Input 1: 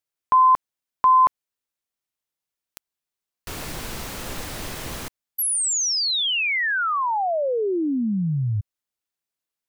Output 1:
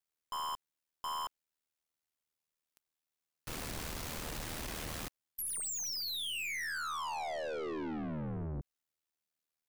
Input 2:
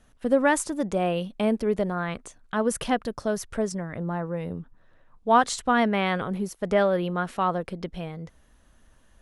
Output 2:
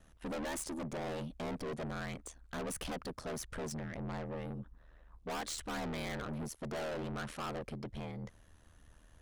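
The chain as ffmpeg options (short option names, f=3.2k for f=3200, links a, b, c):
-af "aeval=exprs='val(0)*sin(2*PI*39*n/s)':c=same,aeval=exprs='(tanh(70.8*val(0)+0.15)-tanh(0.15))/70.8':c=same"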